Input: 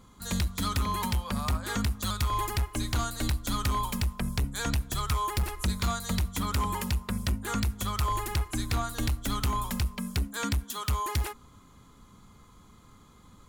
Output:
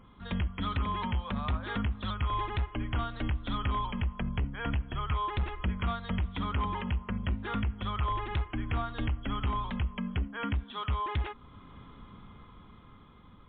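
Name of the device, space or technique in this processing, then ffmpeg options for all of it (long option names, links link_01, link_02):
low-bitrate web radio: -af "dynaudnorm=framelen=490:gausssize=7:maxgain=6.5dB,alimiter=level_in=0.5dB:limit=-24dB:level=0:latency=1:release=484,volume=-0.5dB" -ar 8000 -c:a libmp3lame -b:a 48k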